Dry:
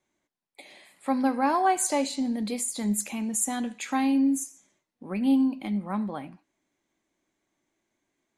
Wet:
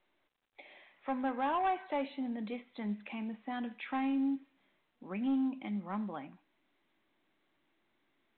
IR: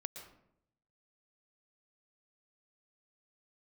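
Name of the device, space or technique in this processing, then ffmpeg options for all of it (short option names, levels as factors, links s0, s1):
telephone: -af "asubboost=boost=4:cutoff=210,highpass=350,lowpass=3200,asoftclip=type=tanh:threshold=0.0794,volume=0.631" -ar 8000 -c:a pcm_mulaw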